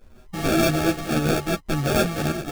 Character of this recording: a buzz of ramps at a fixed pitch in blocks of 32 samples; phasing stages 12, 3.4 Hz, lowest notch 680–2700 Hz; aliases and images of a low sample rate 1 kHz, jitter 0%; a shimmering, thickened sound

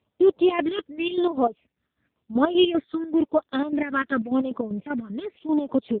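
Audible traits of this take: chopped level 5.1 Hz, depth 65%, duty 50%; phasing stages 12, 0.93 Hz, lowest notch 790–2300 Hz; AMR-NB

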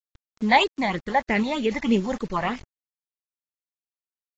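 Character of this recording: phasing stages 8, 3.2 Hz, lowest notch 370–1200 Hz; a quantiser's noise floor 8-bit, dither none; random-step tremolo; AAC

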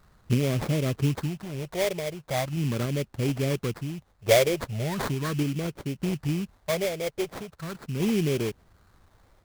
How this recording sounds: a quantiser's noise floor 12-bit, dither triangular; random-step tremolo; phasing stages 4, 0.39 Hz, lowest notch 240–1000 Hz; aliases and images of a low sample rate 2.8 kHz, jitter 20%

